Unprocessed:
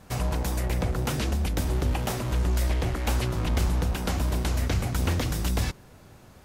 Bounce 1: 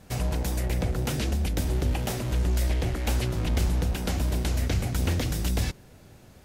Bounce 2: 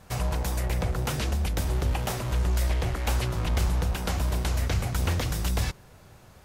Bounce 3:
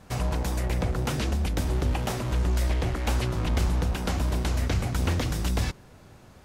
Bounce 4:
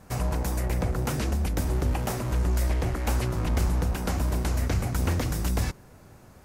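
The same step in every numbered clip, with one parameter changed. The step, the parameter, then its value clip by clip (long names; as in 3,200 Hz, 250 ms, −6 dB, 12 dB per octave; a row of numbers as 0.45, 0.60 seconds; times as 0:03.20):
parametric band, centre frequency: 1,100, 270, 15,000, 3,400 Hertz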